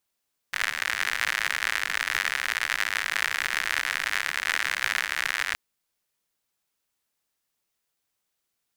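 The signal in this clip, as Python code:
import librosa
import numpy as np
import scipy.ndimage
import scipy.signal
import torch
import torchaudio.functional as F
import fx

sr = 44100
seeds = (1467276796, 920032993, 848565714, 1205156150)

y = fx.rain(sr, seeds[0], length_s=5.02, drops_per_s=92.0, hz=1800.0, bed_db=-25.0)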